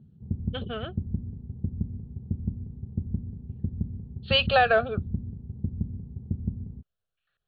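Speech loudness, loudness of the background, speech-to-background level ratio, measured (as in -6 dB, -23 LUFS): -23.0 LUFS, -35.0 LUFS, 12.0 dB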